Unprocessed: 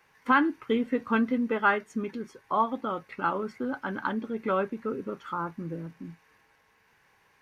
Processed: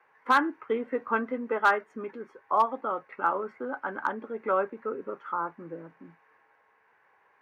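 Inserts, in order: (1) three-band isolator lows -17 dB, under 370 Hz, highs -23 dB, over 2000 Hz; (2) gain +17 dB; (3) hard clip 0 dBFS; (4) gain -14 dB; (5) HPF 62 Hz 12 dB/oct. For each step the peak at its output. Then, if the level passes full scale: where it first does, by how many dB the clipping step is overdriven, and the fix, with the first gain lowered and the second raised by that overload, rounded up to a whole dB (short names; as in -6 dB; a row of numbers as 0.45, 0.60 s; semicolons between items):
-12.0, +5.0, 0.0, -14.0, -13.0 dBFS; step 2, 5.0 dB; step 2 +12 dB, step 4 -9 dB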